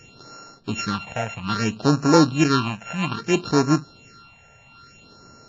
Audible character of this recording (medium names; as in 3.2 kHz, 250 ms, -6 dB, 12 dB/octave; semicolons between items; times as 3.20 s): a buzz of ramps at a fixed pitch in blocks of 32 samples; phasing stages 6, 0.61 Hz, lowest notch 310–3200 Hz; WMA